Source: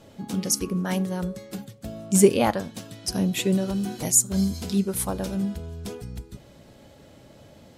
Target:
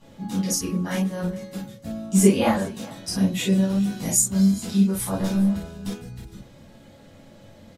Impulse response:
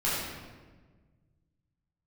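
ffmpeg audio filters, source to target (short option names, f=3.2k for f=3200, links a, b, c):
-filter_complex "[0:a]aecho=1:1:410:0.0944,asettb=1/sr,asplit=3[a][b][c];[a]atrim=end=5.134[d];[b]atrim=start=5.13:end=5.88,asetpts=PTS-STARTPTS,afade=t=in:d=0.004:c=qsin,afade=t=out:st=0.746:d=0.004:c=qsin,aeval=exprs='0.133*(cos(1*acos(clip(val(0)/0.133,-1,1)))-cos(1*PI/2))+0.0211*(cos(5*acos(clip(val(0)/0.133,-1,1)))-cos(5*PI/2))+0.00596*(cos(7*acos(clip(val(0)/0.133,-1,1)))-cos(7*PI/2))':c=same[e];[c]atrim=start=5.876[f];[d][e]acrossfade=d=0.004:c1=hsin:c2=qsin[g];[g][f]acrossfade=d=0.004:c1=qsin:c2=hsin[h];[1:a]atrim=start_sample=2205,atrim=end_sample=3969,asetrate=57330,aresample=44100[i];[h][i]afir=irnorm=-1:irlink=0,volume=-5dB"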